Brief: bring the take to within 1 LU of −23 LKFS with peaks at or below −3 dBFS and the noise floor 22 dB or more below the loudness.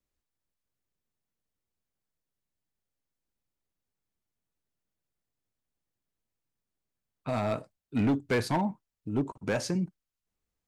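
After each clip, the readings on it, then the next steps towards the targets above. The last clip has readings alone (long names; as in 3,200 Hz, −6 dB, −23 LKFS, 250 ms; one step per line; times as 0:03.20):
share of clipped samples 0.7%; peaks flattened at −21.5 dBFS; integrated loudness −31.0 LKFS; sample peak −21.5 dBFS; target loudness −23.0 LKFS
→ clipped peaks rebuilt −21.5 dBFS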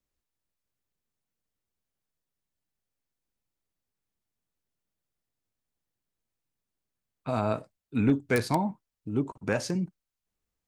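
share of clipped samples 0.0%; integrated loudness −29.5 LKFS; sample peak −12.5 dBFS; target loudness −23.0 LKFS
→ level +6.5 dB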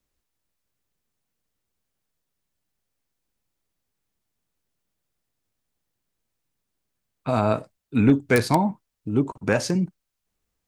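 integrated loudness −23.0 LKFS; sample peak −6.0 dBFS; background noise floor −81 dBFS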